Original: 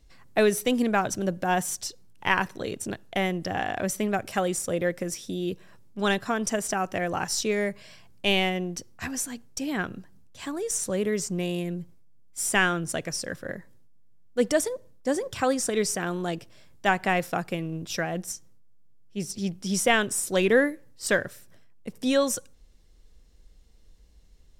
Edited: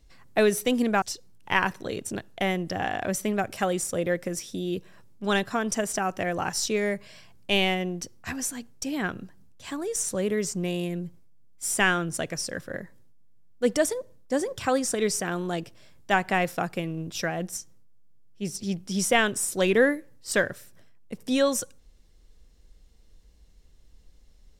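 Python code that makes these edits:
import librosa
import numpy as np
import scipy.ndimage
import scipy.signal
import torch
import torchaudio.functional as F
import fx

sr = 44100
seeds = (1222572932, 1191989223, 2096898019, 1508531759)

y = fx.edit(x, sr, fx.cut(start_s=1.02, length_s=0.75), tone=tone)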